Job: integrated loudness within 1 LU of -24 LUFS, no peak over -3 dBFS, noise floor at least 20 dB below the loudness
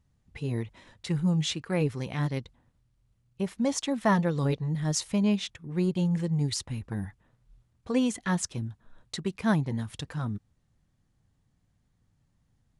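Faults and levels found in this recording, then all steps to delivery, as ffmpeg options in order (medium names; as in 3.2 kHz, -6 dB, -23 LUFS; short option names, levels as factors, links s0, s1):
loudness -29.5 LUFS; peak level -12.5 dBFS; loudness target -24.0 LUFS
-> -af "volume=1.88"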